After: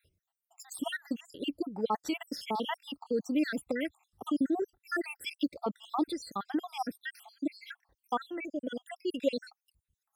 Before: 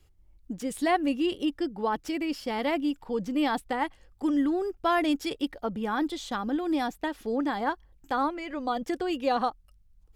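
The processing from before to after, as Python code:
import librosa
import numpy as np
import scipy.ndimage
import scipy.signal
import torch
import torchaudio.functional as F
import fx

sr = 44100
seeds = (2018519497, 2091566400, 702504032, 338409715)

y = fx.spec_dropout(x, sr, seeds[0], share_pct=72)
y = scipy.signal.sosfilt(scipy.signal.butter(2, 100.0, 'highpass', fs=sr, output='sos'), y)
y = fx.high_shelf(y, sr, hz=5400.0, db=5.0)
y = fx.band_squash(y, sr, depth_pct=40, at=(2.19, 4.41))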